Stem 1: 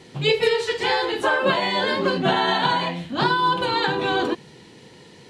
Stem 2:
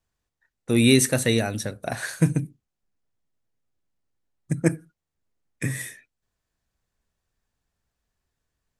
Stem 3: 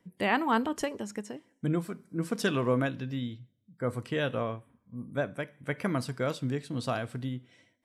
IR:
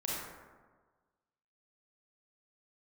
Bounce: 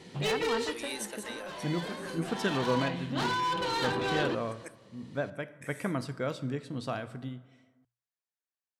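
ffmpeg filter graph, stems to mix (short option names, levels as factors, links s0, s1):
-filter_complex "[0:a]asoftclip=type=tanh:threshold=0.0708,volume=0.596,asplit=2[s0][s1];[s1]volume=0.0631[s2];[1:a]highpass=630,volume=0.15,asplit=2[s3][s4];[2:a]highshelf=f=9600:g=-9,dynaudnorm=f=510:g=5:m=2.37,volume=0.299,asplit=2[s5][s6];[s6]volume=0.126[s7];[s4]apad=whole_len=233692[s8];[s0][s8]sidechaincompress=threshold=0.00282:ratio=12:attack=11:release=1110[s9];[3:a]atrim=start_sample=2205[s10];[s2][s7]amix=inputs=2:normalize=0[s11];[s11][s10]afir=irnorm=-1:irlink=0[s12];[s9][s3][s5][s12]amix=inputs=4:normalize=0,bandreject=f=60:t=h:w=6,bandreject=f=120:t=h:w=6"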